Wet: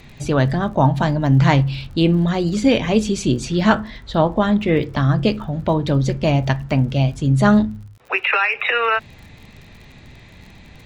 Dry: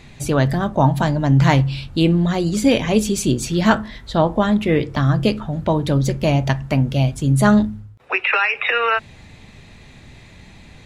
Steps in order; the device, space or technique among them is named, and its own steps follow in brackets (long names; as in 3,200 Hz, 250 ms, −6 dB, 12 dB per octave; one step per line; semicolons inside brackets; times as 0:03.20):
lo-fi chain (low-pass filter 5,900 Hz 12 dB per octave; tape wow and flutter 22 cents; surface crackle 45 per second −36 dBFS)